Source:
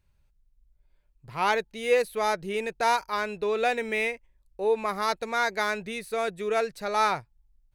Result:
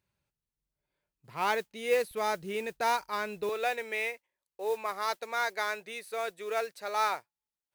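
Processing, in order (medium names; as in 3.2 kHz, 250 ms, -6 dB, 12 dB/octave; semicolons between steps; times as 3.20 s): high-pass 150 Hz 12 dB/octave, from 2.11 s 63 Hz, from 3.49 s 440 Hz; modulation noise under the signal 22 dB; trim -4.5 dB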